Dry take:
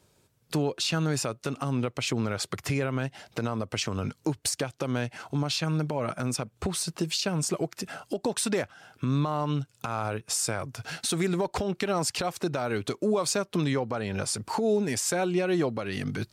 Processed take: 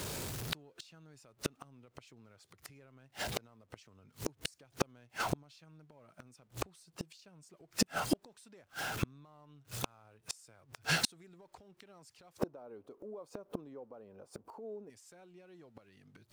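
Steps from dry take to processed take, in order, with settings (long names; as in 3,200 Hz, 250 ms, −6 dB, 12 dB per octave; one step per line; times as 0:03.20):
converter with a step at zero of −41 dBFS
0:12.38–0:14.90: octave-band graphic EQ 125/250/500/1,000/2,000/4,000/8,000 Hz −4/+6/+12/+6/−6/−7/−7 dB
gate with flip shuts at −22 dBFS, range −37 dB
level +5.5 dB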